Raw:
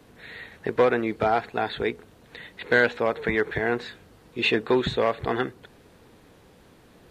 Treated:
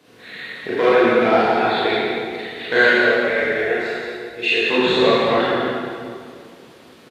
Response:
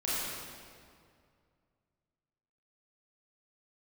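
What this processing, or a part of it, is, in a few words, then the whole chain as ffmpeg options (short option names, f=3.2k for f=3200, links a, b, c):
PA in a hall: -filter_complex "[0:a]asettb=1/sr,asplit=3[a][b][c];[a]atrim=end=2.874[d];[b]atrim=start=2.87:end=4.68,asetpts=PTS-STARTPTS,afade=t=in:d=0.004:c=qsin,afade=t=out:st=1.806:d=0.004:c=qsin,equalizer=f=125:t=o:w=1:g=-7,equalizer=f=250:t=o:w=1:g=-11,equalizer=f=500:t=o:w=1:g=3,equalizer=f=1k:t=o:w=1:g=-10,equalizer=f=4k:t=o:w=1:g=-6[e];[c]atrim=start=4.676[f];[d][e]acrossfade=d=0.004:c1=hsin:c2=qsin[g];[g][f]acrossfade=d=0.004:c1=qsin:c2=hsin,highpass=150,equalizer=f=3.7k:t=o:w=1.9:g=6,aecho=1:1:172:0.422[h];[1:a]atrim=start_sample=2205[i];[h][i]afir=irnorm=-1:irlink=0,volume=-1dB"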